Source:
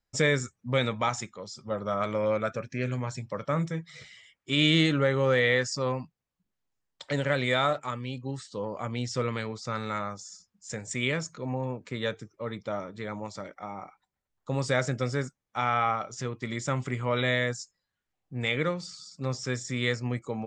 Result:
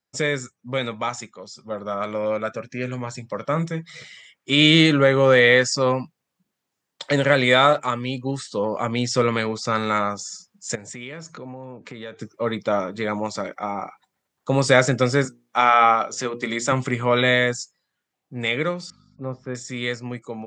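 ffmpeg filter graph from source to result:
-filter_complex "[0:a]asettb=1/sr,asplit=3[a][b][c];[a]atrim=end=10.754[d];[b]atrim=start=10.75:end=12.21,asetpts=PTS-STARTPTS,afade=t=in:d=0.004:c=qsin,afade=t=out:st=1.456:d=0.004:c=qsin,lowpass=f=3.8k:p=1,acompressor=threshold=-45dB:ratio=4:attack=3.2:release=140:knee=1:detection=peak[e];[c]atrim=start=12.206[f];[d][e]acrossfade=d=0.004:c1=hsin:c2=qsin[g];[g][f]acrossfade=d=0.004:c1=qsin:c2=hsin,asettb=1/sr,asplit=3[h][i][j];[h]atrim=end=15.254[k];[i]atrim=start=15.25:end=16.72,asetpts=PTS-STARTPTS,afade=t=in:d=0.004:c=qsin,afade=t=out:st=1.466:d=0.004:c=qsin,highpass=200,bandreject=f=60:t=h:w=6,bandreject=f=120:t=h:w=6,bandreject=f=180:t=h:w=6,bandreject=f=240:t=h:w=6,bandreject=f=300:t=h:w=6,bandreject=f=360:t=h:w=6,bandreject=f=420:t=h:w=6,bandreject=f=480:t=h:w=6,bandreject=f=540:t=h:w=6[l];[j]atrim=start=16.716[m];[k][l]acrossfade=d=0.004:c1=hsin:c2=qsin[n];[n][m]acrossfade=d=0.004:c1=qsin:c2=hsin,asettb=1/sr,asplit=3[o][p][q];[o]atrim=end=18.904[r];[p]atrim=start=18.9:end=19.55,asetpts=PTS-STARTPTS,afade=t=in:d=0.004:c=qsin,afade=t=out:st=0.646:d=0.004:c=qsin,lowpass=1.2k,aeval=exprs='val(0)+0.00282*(sin(2*PI*50*n/s)+sin(2*PI*2*50*n/s)/2+sin(2*PI*3*50*n/s)/3+sin(2*PI*4*50*n/s)/4+sin(2*PI*5*50*n/s)/5)':c=same[s];[q]atrim=start=19.546[t];[r][s]acrossfade=d=0.004:c1=hsin:c2=qsin[u];[u][t]acrossfade=d=0.004:c1=qsin:c2=hsin,highpass=150,dynaudnorm=f=580:g=13:m=11.5dB,volume=1.5dB"

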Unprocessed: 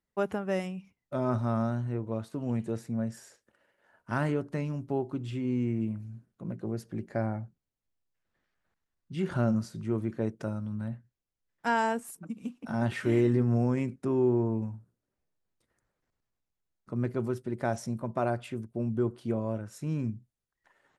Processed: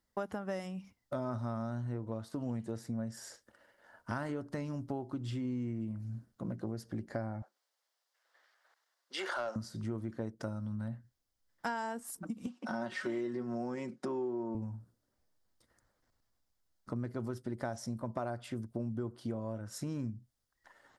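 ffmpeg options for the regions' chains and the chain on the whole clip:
-filter_complex "[0:a]asettb=1/sr,asplit=3[a][b][c];[a]atrim=end=7.424[d];[b]atrim=start=7.42:end=9.56,asetpts=PTS-STARTPTS,afade=t=in:d=0.004:c=qsin,afade=t=out:st=2.136:d=0.004:c=qsin,highpass=f=440:w=0.5412,highpass=f=440:w=1.3066,asplit=2[e][f];[f]highpass=f=720:p=1,volume=13dB,asoftclip=type=tanh:threshold=-21dB[g];[e][g]amix=inputs=2:normalize=0,lowpass=f=4.8k:p=1,volume=-6dB[h];[c]atrim=start=9.556[i];[d][h]acrossfade=d=0.004:c1=hsin:c2=qsin[j];[j][i]acrossfade=d=0.004:c1=qsin:c2=hsin,asettb=1/sr,asplit=3[k][l][m];[k]atrim=end=12.464[n];[l]atrim=start=12.46:end=14.55,asetpts=PTS-STARTPTS,afade=t=in:d=0.004:c=qsin,afade=t=out:st=2.086:d=0.004:c=qsin,highpass=250,lowpass=7.2k,aecho=1:1:5.4:0.51,atrim=end_sample=92169[o];[m]atrim=start=14.546[p];[n][o]acrossfade=d=0.004:c1=hsin:c2=qsin[q];[q][p]acrossfade=d=0.004:c1=qsin:c2=hsin,equalizer=f=160:t=o:w=0.33:g=-9,equalizer=f=400:t=o:w=0.33:g=-6,equalizer=f=2.5k:t=o:w=0.33:g=-8,equalizer=f=5k:t=o:w=0.33:g=5,acompressor=threshold=-41dB:ratio=5,volume=5.5dB"

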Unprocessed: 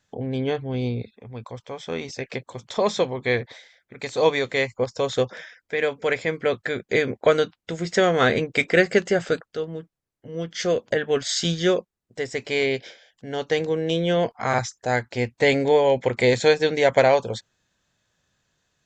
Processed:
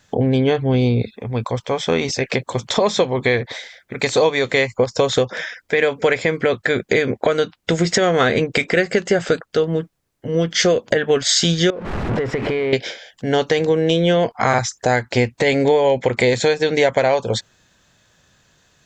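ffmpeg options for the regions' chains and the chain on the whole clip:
-filter_complex "[0:a]asettb=1/sr,asplit=3[a][b][c];[a]atrim=end=11.704[d];[b]atrim=start=11.7:end=12.73,asetpts=PTS-STARTPTS,afade=t=in:d=0.004:c=qsin,afade=t=out:st=1.026:d=0.004:c=qsin,aeval=exprs='val(0)+0.5*0.0422*sgn(val(0))':c=same,lowpass=1.7k,acompressor=threshold=-31dB:ratio=16:attack=3.2:release=140:knee=1:detection=peak[e];[c]atrim=start=12.726[f];[d][e]acrossfade=d=0.004:c1=hsin:c2=qsin[g];[g][f]acrossfade=d=0.004:c1=qsin:c2=hsin,acompressor=threshold=-27dB:ratio=6,alimiter=level_in=17.5dB:limit=-1dB:release=50:level=0:latency=1,volume=-3.5dB"

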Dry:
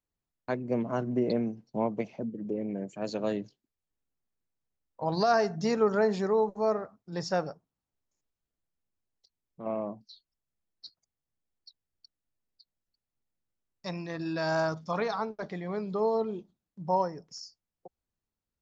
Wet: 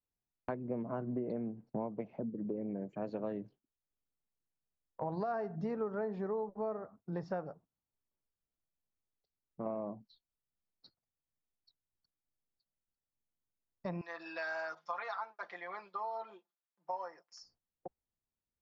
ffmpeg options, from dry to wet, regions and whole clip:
-filter_complex "[0:a]asettb=1/sr,asplit=3[a][b][c];[a]atrim=end=14.014[d];[b]atrim=start=14.01:end=17.43,asetpts=PTS-STARTPTS,afade=t=in:d=0.004:c=qsin,afade=t=out:st=3.416:d=0.004:c=qsin,highpass=1.2k,aemphasis=mode=production:type=bsi,aecho=1:1:5.8:0.83,atrim=end_sample=150822[e];[c]atrim=start=17.426[f];[d][e]acrossfade=d=0.004:c1=hsin:c2=qsin[g];[g][f]acrossfade=d=0.004:c1=qsin:c2=hsin,agate=range=-10dB:threshold=-53dB:ratio=16:detection=peak,lowpass=1.5k,acompressor=threshold=-41dB:ratio=4,volume=4dB"

